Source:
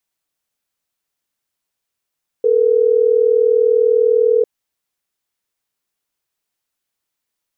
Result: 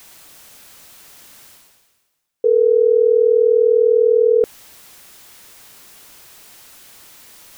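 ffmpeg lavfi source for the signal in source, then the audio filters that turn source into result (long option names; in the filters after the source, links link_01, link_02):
-f lavfi -i "aevalsrc='0.224*(sin(2*PI*440*t)+sin(2*PI*480*t))*clip(min(mod(t,6),2-mod(t,6))/0.005,0,1)':duration=3.12:sample_rate=44100"
-af "areverse,acompressor=mode=upward:threshold=-16dB:ratio=2.5,areverse"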